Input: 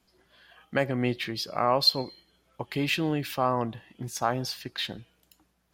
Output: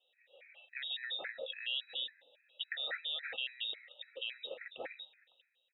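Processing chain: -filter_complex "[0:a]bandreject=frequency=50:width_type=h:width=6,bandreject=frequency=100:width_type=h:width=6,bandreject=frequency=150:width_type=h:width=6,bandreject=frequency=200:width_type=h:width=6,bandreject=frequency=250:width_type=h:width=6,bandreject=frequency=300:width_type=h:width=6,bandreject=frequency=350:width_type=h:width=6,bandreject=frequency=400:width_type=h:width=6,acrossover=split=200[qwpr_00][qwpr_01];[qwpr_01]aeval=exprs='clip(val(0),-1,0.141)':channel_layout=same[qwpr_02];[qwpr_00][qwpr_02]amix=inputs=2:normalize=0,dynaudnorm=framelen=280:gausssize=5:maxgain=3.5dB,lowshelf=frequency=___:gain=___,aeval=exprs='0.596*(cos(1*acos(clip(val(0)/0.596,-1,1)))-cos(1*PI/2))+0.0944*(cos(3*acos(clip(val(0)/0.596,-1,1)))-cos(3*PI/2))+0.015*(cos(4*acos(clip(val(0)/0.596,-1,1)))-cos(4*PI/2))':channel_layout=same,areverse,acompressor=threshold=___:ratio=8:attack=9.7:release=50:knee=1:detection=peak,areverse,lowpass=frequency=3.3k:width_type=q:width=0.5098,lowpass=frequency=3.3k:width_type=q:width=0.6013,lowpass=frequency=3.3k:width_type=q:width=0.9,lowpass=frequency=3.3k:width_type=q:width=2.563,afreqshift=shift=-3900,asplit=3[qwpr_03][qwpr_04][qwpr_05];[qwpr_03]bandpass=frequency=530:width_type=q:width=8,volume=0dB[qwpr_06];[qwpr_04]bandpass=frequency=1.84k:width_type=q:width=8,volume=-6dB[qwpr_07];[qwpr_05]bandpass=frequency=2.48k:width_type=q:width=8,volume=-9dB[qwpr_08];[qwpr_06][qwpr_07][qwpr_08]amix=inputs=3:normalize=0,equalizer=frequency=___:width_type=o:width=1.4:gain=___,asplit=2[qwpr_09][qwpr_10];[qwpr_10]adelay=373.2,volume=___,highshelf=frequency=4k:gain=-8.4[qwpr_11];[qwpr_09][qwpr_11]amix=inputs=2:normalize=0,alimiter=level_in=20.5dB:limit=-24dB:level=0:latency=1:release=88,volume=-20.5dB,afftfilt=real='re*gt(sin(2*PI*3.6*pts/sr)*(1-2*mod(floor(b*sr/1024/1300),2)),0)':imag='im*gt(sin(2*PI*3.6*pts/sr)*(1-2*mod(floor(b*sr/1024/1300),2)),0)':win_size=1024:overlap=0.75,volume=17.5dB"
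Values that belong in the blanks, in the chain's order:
110, 6, -36dB, 190, -6, -28dB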